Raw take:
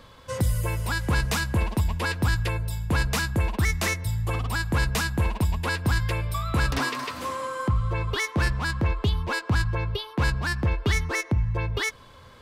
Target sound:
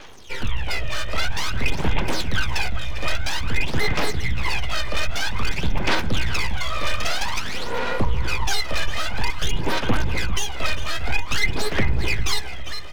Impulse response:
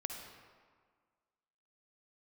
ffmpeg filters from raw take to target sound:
-filter_complex "[0:a]aexciter=amount=3.3:drive=5.7:freq=2100,asplit=2[s0][s1];[s1]adelay=389,lowpass=f=1800:p=1,volume=0.316,asplit=2[s2][s3];[s3]adelay=389,lowpass=f=1800:p=1,volume=0.53,asplit=2[s4][s5];[s5]adelay=389,lowpass=f=1800:p=1,volume=0.53,asplit=2[s6][s7];[s7]adelay=389,lowpass=f=1800:p=1,volume=0.53,asplit=2[s8][s9];[s9]adelay=389,lowpass=f=1800:p=1,volume=0.53,asplit=2[s10][s11];[s11]adelay=389,lowpass=f=1800:p=1,volume=0.53[s12];[s2][s4][s6][s8][s10][s12]amix=inputs=6:normalize=0[s13];[s0][s13]amix=inputs=2:normalize=0,afreqshift=-48,volume=7.94,asoftclip=hard,volume=0.126,aresample=8000,aresample=44100,aeval=exprs='abs(val(0))':c=same,aphaser=in_gain=1:out_gain=1:delay=1.6:decay=0.66:speed=0.53:type=sinusoidal,asplit=2[s14][s15];[s15]aecho=0:1:380|760|1140|1520:0.133|0.0587|0.0258|0.0114[s16];[s14][s16]amix=inputs=2:normalize=0,asetrate=42336,aresample=44100,lowshelf=f=150:g=-4.5,volume=1.26"

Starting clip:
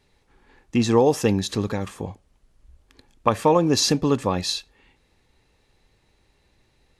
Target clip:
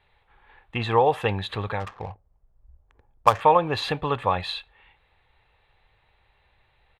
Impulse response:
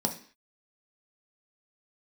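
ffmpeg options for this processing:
-filter_complex "[0:a]firequalizer=gain_entry='entry(100,0);entry(250,-14);entry(460,-2);entry(770,6);entry(3600,3);entry(5500,-26);entry(8800,-15)':delay=0.05:min_phase=1,asettb=1/sr,asplit=3[s0][s1][s2];[s0]atrim=end=1.804[s3];[s1]atrim=start=1.8:end=3.41,asetpts=PTS-STARTPTS,afade=t=in:d=0.004:c=qsin,afade=t=out:st=1.606:d=0.004:c=qsin,adynamicsmooth=sensitivity=4.5:basefreq=570[s4];[s2]atrim=start=3.406[s5];[s3][s4]acrossfade=d=0.004:c1=hsin:c2=qsin[s6];[s6][s5]acrossfade=d=0.004:c1=qsin:c2=hsin,volume=0.841"

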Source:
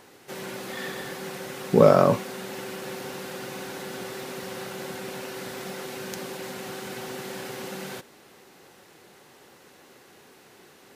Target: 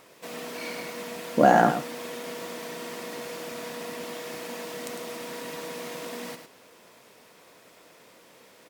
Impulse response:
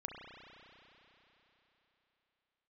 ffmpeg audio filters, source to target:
-filter_complex "[0:a]asetrate=55566,aresample=44100,asplit=2[s0][s1];[s1]aecho=0:1:104:0.398[s2];[s0][s2]amix=inputs=2:normalize=0,volume=0.794"

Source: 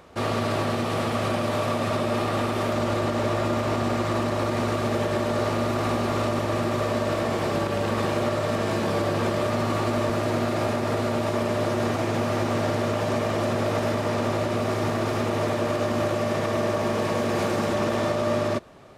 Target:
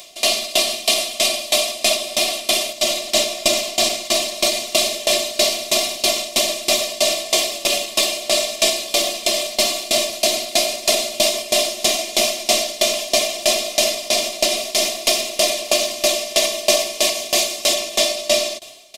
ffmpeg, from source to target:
-filter_complex "[0:a]aecho=1:1:2.9:0.91,acrossover=split=200[s0][s1];[s0]aeval=exprs='val(0)*sin(2*PI*110*n/s)':c=same[s2];[s1]aexciter=amount=13.1:drive=7.6:freq=2300[s3];[s2][s3]amix=inputs=2:normalize=0,equalizer=f=1400:t=o:w=0.43:g=-10,alimiter=limit=0.501:level=0:latency=1:release=408,superequalizer=8b=3.55:10b=2.24,aeval=exprs='val(0)*pow(10,-21*if(lt(mod(3.1*n/s,1),2*abs(3.1)/1000),1-mod(3.1*n/s,1)/(2*abs(3.1)/1000),(mod(3.1*n/s,1)-2*abs(3.1)/1000)/(1-2*abs(3.1)/1000))/20)':c=same,volume=1.33"

